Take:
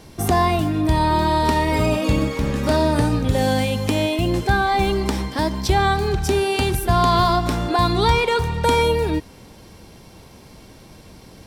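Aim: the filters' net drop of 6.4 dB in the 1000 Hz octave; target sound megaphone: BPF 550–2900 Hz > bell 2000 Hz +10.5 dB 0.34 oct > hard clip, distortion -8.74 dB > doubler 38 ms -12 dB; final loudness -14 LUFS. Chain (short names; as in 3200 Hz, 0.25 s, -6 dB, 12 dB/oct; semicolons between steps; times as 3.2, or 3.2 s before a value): BPF 550–2900 Hz; bell 1000 Hz -7.5 dB; bell 2000 Hz +10.5 dB 0.34 oct; hard clip -24.5 dBFS; doubler 38 ms -12 dB; gain +14 dB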